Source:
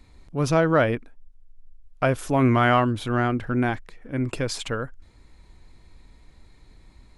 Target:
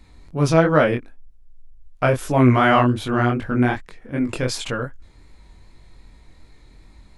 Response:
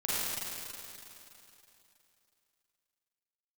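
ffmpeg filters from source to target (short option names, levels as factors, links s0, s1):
-af "flanger=delay=19.5:depth=5:speed=2.6,volume=2.11"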